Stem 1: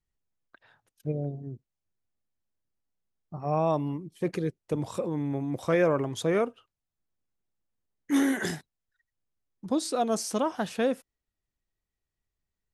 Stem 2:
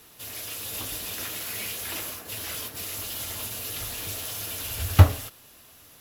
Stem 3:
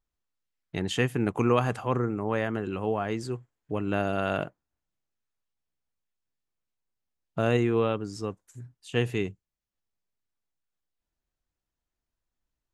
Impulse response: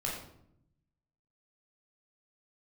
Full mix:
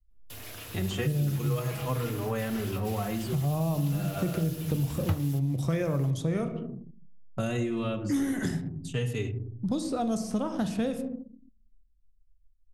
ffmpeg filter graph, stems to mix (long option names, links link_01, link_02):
-filter_complex "[0:a]bass=frequency=250:gain=12,treble=frequency=4000:gain=5,volume=-0.5dB,asplit=3[link_01][link_02][link_03];[link_02]volume=-9dB[link_04];[1:a]adelay=100,volume=-3dB[link_05];[2:a]bass=frequency=250:gain=2,treble=frequency=4000:gain=13,asplit=2[link_06][link_07];[link_07]adelay=4.6,afreqshift=-0.44[link_08];[link_06][link_08]amix=inputs=2:normalize=1,volume=-2dB,asplit=2[link_09][link_10];[link_10]volume=-8dB[link_11];[link_03]apad=whole_len=561899[link_12];[link_09][link_12]sidechaincompress=threshold=-25dB:ratio=8:attack=16:release=1120[link_13];[3:a]atrim=start_sample=2205[link_14];[link_04][link_11]amix=inputs=2:normalize=0[link_15];[link_15][link_14]afir=irnorm=-1:irlink=0[link_16];[link_01][link_05][link_13][link_16]amix=inputs=4:normalize=0,anlmdn=0.1,lowshelf=frequency=150:gain=9.5,acrossover=split=98|3000[link_17][link_18][link_19];[link_17]acompressor=threshold=-46dB:ratio=4[link_20];[link_18]acompressor=threshold=-28dB:ratio=4[link_21];[link_19]acompressor=threshold=-46dB:ratio=4[link_22];[link_20][link_21][link_22]amix=inputs=3:normalize=0"